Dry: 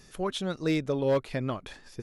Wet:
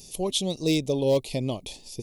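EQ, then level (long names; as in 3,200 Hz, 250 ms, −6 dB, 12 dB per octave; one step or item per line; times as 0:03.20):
Butterworth band-reject 1,500 Hz, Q 0.78
high-shelf EQ 2,500 Hz +8.5 dB
high-shelf EQ 9,600 Hz +7.5 dB
+3.0 dB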